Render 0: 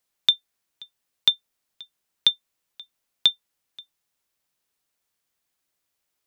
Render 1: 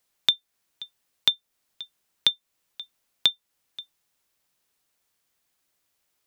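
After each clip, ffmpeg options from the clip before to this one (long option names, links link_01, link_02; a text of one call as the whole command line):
ffmpeg -i in.wav -af "acompressor=threshold=-32dB:ratio=1.5,volume=4dB" out.wav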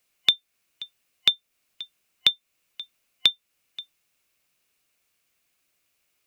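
ffmpeg -i in.wav -af "superequalizer=9b=0.631:12b=2,volume=1.5dB" out.wav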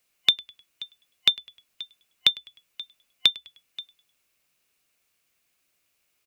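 ffmpeg -i in.wav -filter_complex "[0:a]asplit=4[link_01][link_02][link_03][link_04];[link_02]adelay=102,afreqshift=-65,volume=-23dB[link_05];[link_03]adelay=204,afreqshift=-130,volume=-31dB[link_06];[link_04]adelay=306,afreqshift=-195,volume=-38.9dB[link_07];[link_01][link_05][link_06][link_07]amix=inputs=4:normalize=0" out.wav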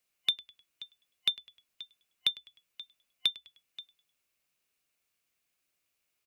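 ffmpeg -i in.wav -af "asoftclip=type=tanh:threshold=-5dB,volume=-8dB" out.wav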